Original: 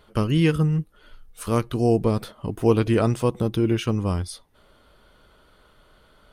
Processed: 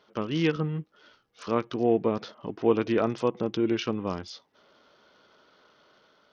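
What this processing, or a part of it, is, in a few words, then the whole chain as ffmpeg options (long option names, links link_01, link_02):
Bluetooth headset: -af "highpass=230,dynaudnorm=framelen=110:gausssize=7:maxgain=3dB,aresample=16000,aresample=44100,volume=-5dB" -ar 48000 -c:a sbc -b:a 64k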